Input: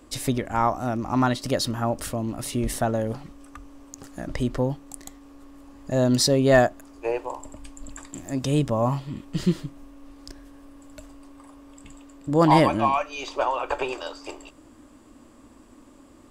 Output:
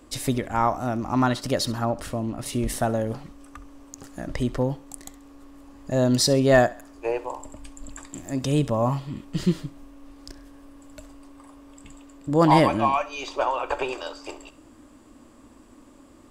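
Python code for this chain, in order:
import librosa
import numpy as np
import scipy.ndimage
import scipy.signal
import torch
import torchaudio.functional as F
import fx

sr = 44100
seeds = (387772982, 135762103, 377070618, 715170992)

y = fx.lowpass(x, sr, hz=3900.0, slope=6, at=(1.85, 2.46))
y = fx.echo_thinned(y, sr, ms=67, feedback_pct=40, hz=420.0, wet_db=-18.0)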